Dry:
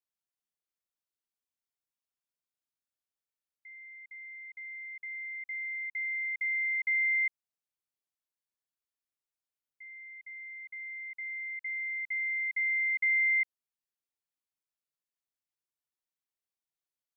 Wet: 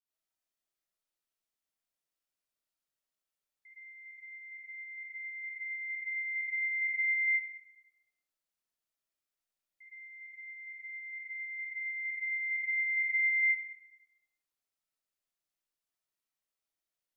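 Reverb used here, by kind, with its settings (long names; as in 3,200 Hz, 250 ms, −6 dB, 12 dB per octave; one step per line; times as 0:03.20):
comb and all-pass reverb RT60 0.86 s, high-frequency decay 0.95×, pre-delay 30 ms, DRR −9 dB
level −7 dB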